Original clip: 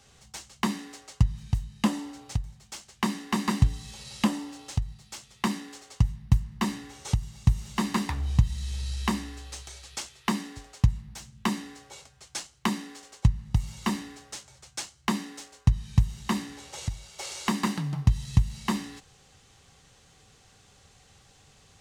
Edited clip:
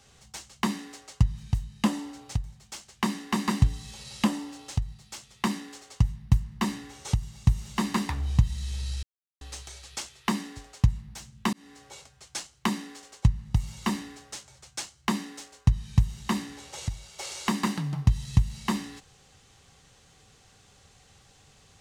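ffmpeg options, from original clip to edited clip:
-filter_complex "[0:a]asplit=4[a][b][c][d];[a]atrim=end=9.03,asetpts=PTS-STARTPTS,afade=t=out:st=9.026:d=0.004:c=hsin[e];[b]atrim=start=9.03:end=9.41,asetpts=PTS-STARTPTS,volume=0[f];[c]atrim=start=9.41:end=11.53,asetpts=PTS-STARTPTS,afade=t=in:d=0.004:c=hsin,afade=t=out:st=2.116:d=0.004:c=hsin[g];[d]atrim=start=11.53,asetpts=PTS-STARTPTS,afade=t=in:d=0.35[h];[e][f][g][h]concat=n=4:v=0:a=1"

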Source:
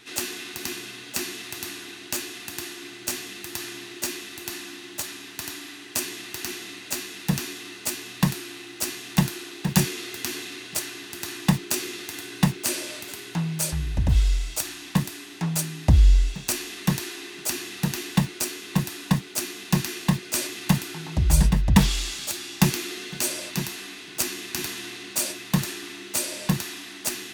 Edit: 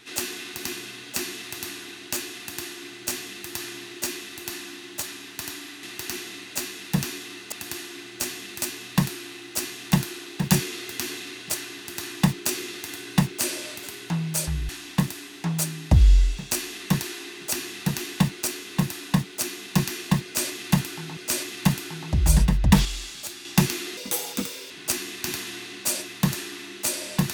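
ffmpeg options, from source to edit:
-filter_complex "[0:a]asplit=10[a][b][c][d][e][f][g][h][i][j];[a]atrim=end=5.832[k];[b]atrim=start=6.178:end=7.872[l];[c]atrim=start=2.388:end=3.492[m];[d]atrim=start=7.868:end=13.942[n];[e]atrim=start=14.658:end=21.142[o];[f]atrim=start=20.208:end=21.892[p];[g]atrim=start=21.888:end=22.492,asetpts=PTS-STARTPTS,volume=-5dB[q];[h]atrim=start=22.488:end=23.014[r];[i]atrim=start=23.01:end=24.01,asetpts=PTS-STARTPTS,asetrate=59976,aresample=44100,atrim=end_sample=32426,asetpts=PTS-STARTPTS[s];[j]atrim=start=24.006[t];[k][l]acrossfade=d=0.004:c1=hsin:c2=hsin[u];[u][m]acrossfade=d=0.004:c1=hsin:c2=hsin[v];[v][n]acrossfade=d=0.004:c1=hsin:c2=hsin[w];[w][o]acrossfade=d=0.004:c1=hsin:c2=hsin[x];[x][p]acrossfade=d=0.004:c1=hsin:c2=hsin[y];[y][q]acrossfade=d=0.004:c1=hsin:c2=hsin[z];[z][r]acrossfade=d=0.004:c1=hsin:c2=hsin[aa];[aa][s]acrossfade=d=0.004:c1=hsin:c2=hsin[ab];[ab][t]acrossfade=d=0.004:c1=hsin:c2=hsin"

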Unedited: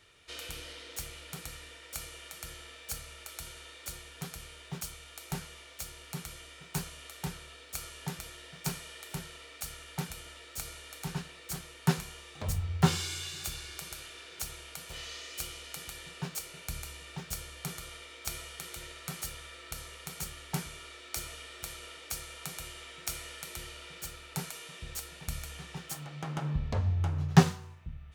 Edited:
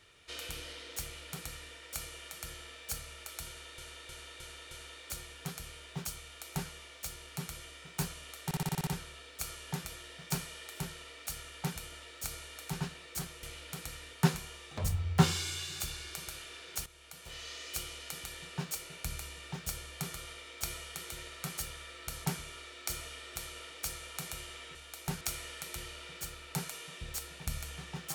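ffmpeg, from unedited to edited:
-filter_complex "[0:a]asplit=18[a][b][c][d][e][f][g][h][i][j][k][l][m][n][o][p][q][r];[a]atrim=end=3.782[s];[b]atrim=start=3.468:end=3.782[t];[c]atrim=start=3.468:end=3.782[u];[d]atrim=start=3.468:end=3.782[v];[e]atrim=start=3.468:end=7.272[w];[f]atrim=start=7.208:end=7.272[x];[g]atrim=start=7.208:end=7.272[y];[h]atrim=start=7.208:end=7.272[z];[i]atrim=start=7.208:end=7.272[aa];[j]atrim=start=7.208:end=7.272[ab];[k]atrim=start=7.208:end=7.272[ac];[l]atrim=start=7.208:end=11.772[ad];[m]atrim=start=1.028:end=1.732[ae];[n]atrim=start=11.768:end=14.5,asetpts=PTS-STARTPTS,afade=t=out:st=2.728:d=0.004:c=hsin:silence=0.199526[af];[o]atrim=start=14.5:end=19.892,asetpts=PTS-STARTPTS,afade=t=in:d=0.8:silence=0.199526[ag];[p]atrim=start=20.518:end=23.022[ah];[q]atrim=start=4.988:end=5.452[ai];[r]atrim=start=23.018[aj];[s][t]acrossfade=d=0.004:c1=hsin:c2=hsin[ak];[ak][u]acrossfade=d=0.004:c1=hsin:c2=hsin[al];[al][v]acrossfade=d=0.004:c1=hsin:c2=hsin[am];[am][w]acrossfade=d=0.004:c1=hsin:c2=hsin[an];[an][x]acrossfade=d=0.004:c1=hsin:c2=hsin[ao];[ao][y]acrossfade=d=0.004:c1=hsin:c2=hsin[ap];[ap][z]acrossfade=d=0.004:c1=hsin:c2=hsin[aq];[aq][aa]acrossfade=d=0.004:c1=hsin:c2=hsin[ar];[ar][ab]acrossfade=d=0.004:c1=hsin:c2=hsin[as];[as][ac]acrossfade=d=0.004:c1=hsin:c2=hsin[at];[at][ad]acrossfade=d=0.004:c1=hsin:c2=hsin[au];[au][ae]acrossfade=d=0.004:c1=hsin:c2=hsin[av];[af][ag]concat=n=2:v=0:a=1[aw];[av][aw]acrossfade=d=0.004:c1=hsin:c2=hsin[ax];[ax][ah]acrossfade=d=0.004:c1=hsin:c2=hsin[ay];[ay][ai]acrossfade=d=0.004:c1=hsin:c2=hsin[az];[az][aj]acrossfade=d=0.004:c1=hsin:c2=hsin"

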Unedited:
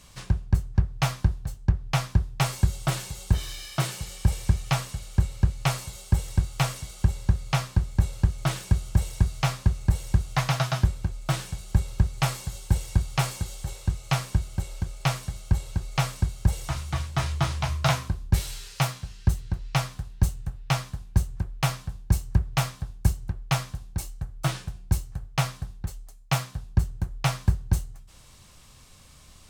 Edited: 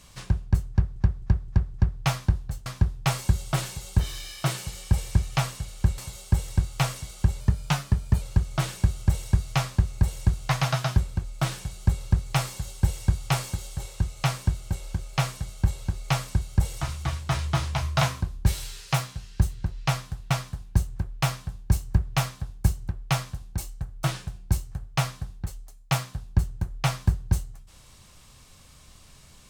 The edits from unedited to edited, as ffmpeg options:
-filter_complex "[0:a]asplit=10[a][b][c][d][e][f][g][h][i][j];[a]atrim=end=0.962[k];[b]atrim=start=0.698:end=0.962[l];[c]atrim=start=0.698:end=0.962[m];[d]atrim=start=0.698:end=0.962[n];[e]atrim=start=0.698:end=1.622[o];[f]atrim=start=1.998:end=5.322[p];[g]atrim=start=5.778:end=7.204[q];[h]atrim=start=7.2:end=8.09,asetpts=PTS-STARTPTS,asetrate=48069,aresample=44100,atrim=end_sample=36008,asetpts=PTS-STARTPTS[r];[i]atrim=start=8.086:end=20.182[s];[j]atrim=start=20.708[t];[k][l]acrossfade=d=0.004:c1=hsin:c2=hsin[u];[u][m]acrossfade=d=0.004:c1=hsin:c2=hsin[v];[v][n]acrossfade=d=0.004:c1=hsin:c2=hsin[w];[w][o]acrossfade=d=0.004:c1=hsin:c2=hsin[x];[x][p]acrossfade=d=0.004:c1=hsin:c2=hsin[y];[y][q]acrossfade=d=0.004:c1=hsin:c2=hsin[z];[z][r]acrossfade=d=0.004:c1=hsin:c2=hsin[aa];[aa][s]acrossfade=d=0.004:c1=hsin:c2=hsin[ab];[ab][t]acrossfade=d=0.004:c1=hsin:c2=hsin"

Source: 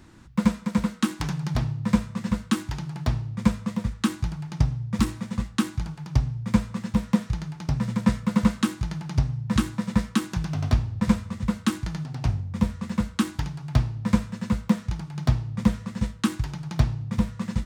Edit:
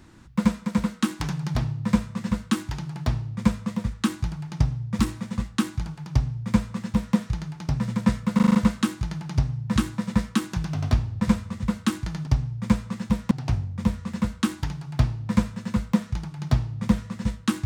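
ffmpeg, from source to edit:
-filter_complex "[0:a]asplit=8[a][b][c][d][e][f][g][h];[a]atrim=end=8.392[i];[b]atrim=start=8.348:end=8.392[j];[c]atrim=start=8.348:end=8.392[k];[d]atrim=start=8.348:end=8.392[l];[e]atrim=start=8.348:end=8.392[m];[f]atrim=start=8.348:end=12.072[n];[g]atrim=start=6.108:end=7.152[o];[h]atrim=start=12.068[p];[i][j]acrossfade=d=0.004:c1=hsin:c2=hsin[q];[q][k]acrossfade=d=0.004:c1=hsin:c2=hsin[r];[r][l]acrossfade=d=0.004:c1=hsin:c2=hsin[s];[s][m]acrossfade=d=0.004:c1=hsin:c2=hsin[t];[t][n]acrossfade=d=0.004:c1=hsin:c2=hsin[u];[u][o]acrossfade=d=0.004:c1=hsin:c2=hsin[v];[v][p]acrossfade=d=0.004:c1=hsin:c2=hsin"

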